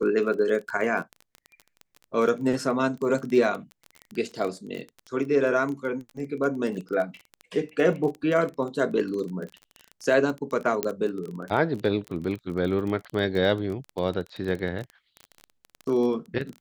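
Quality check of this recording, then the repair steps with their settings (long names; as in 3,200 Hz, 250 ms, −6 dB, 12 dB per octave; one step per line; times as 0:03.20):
surface crackle 21 per second −30 dBFS
0:10.83: click −10 dBFS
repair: click removal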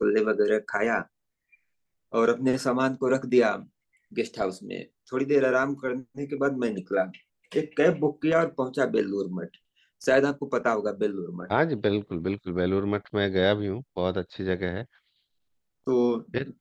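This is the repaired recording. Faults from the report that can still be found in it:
none of them is left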